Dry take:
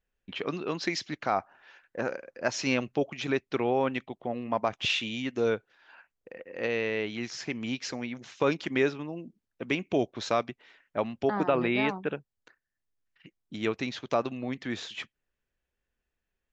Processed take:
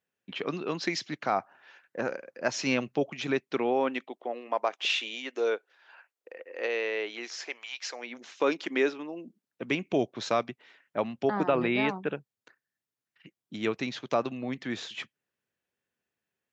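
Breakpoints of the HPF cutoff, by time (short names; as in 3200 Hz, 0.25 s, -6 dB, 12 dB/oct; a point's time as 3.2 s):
HPF 24 dB/oct
3.26 s 120 Hz
4.43 s 360 Hz
7.43 s 360 Hz
7.69 s 940 Hz
8.19 s 250 Hz
9.15 s 250 Hz
9.64 s 110 Hz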